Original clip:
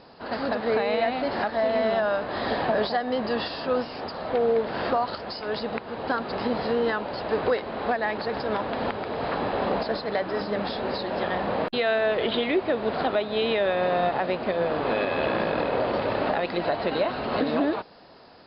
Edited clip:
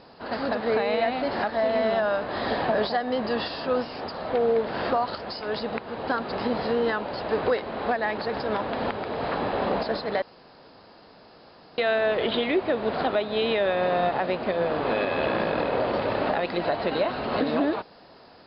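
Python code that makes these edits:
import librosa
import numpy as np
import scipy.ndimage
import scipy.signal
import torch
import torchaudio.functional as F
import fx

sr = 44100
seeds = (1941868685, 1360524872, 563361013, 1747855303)

y = fx.edit(x, sr, fx.room_tone_fill(start_s=10.22, length_s=1.56), tone=tone)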